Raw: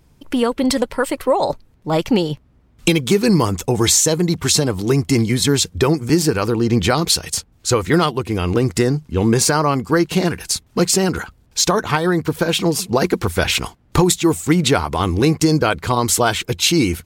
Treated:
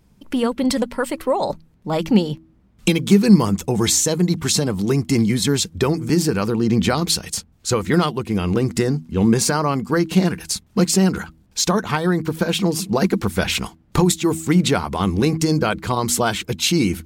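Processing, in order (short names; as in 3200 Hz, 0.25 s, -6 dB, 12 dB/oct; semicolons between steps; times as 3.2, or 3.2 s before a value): bell 200 Hz +11 dB 0.32 oct; de-hum 80.55 Hz, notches 4; gain -3.5 dB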